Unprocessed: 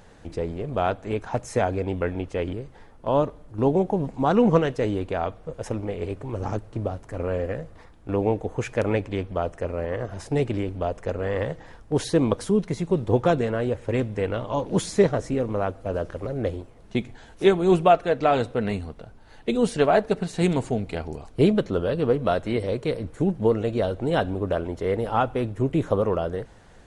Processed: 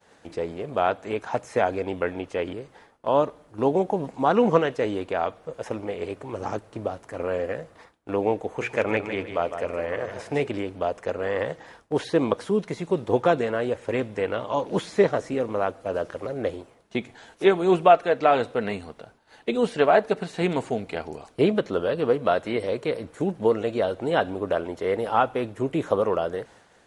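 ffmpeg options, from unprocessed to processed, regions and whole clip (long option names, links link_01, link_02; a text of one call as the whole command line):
ffmpeg -i in.wav -filter_complex "[0:a]asettb=1/sr,asplit=3[link_01][link_02][link_03];[link_01]atrim=end=8.474[link_04];[link_02]atrim=start=8.47:end=10.47,asetpts=PTS-STARTPTS,afade=type=in:duration=0.004:curve=qsin,afade=type=out:start_time=1.996:duration=0.004:curve=qsin,equalizer=frequency=2300:width_type=o:width=0.4:gain=5,bandreject=frequency=60:width_type=h:width=6,bandreject=frequency=120:width_type=h:width=6,bandreject=frequency=180:width_type=h:width=6,bandreject=frequency=240:width_type=h:width=6,bandreject=frequency=300:width_type=h:width=6,bandreject=frequency=360:width_type=h:width=6,bandreject=frequency=420:width_type=h:width=6,bandreject=frequency=480:width_type=h:width=6,aecho=1:1:154|308|462:0.355|0.0958|0.0259,atrim=end_sample=88200[link_05];[link_03]atrim=start=10.466[link_06];[link_04][link_05]acrossfade=duration=0.004:curve1=hsin:curve2=qsin[link_07];[link_07][link_06]acrossfade=duration=0.004:curve1=qsin:curve2=hsin,acrossover=split=3500[link_08][link_09];[link_09]acompressor=threshold=-50dB:ratio=4:attack=1:release=60[link_10];[link_08][link_10]amix=inputs=2:normalize=0,highpass=frequency=440:poles=1,agate=range=-33dB:threshold=-51dB:ratio=3:detection=peak,volume=3dB" out.wav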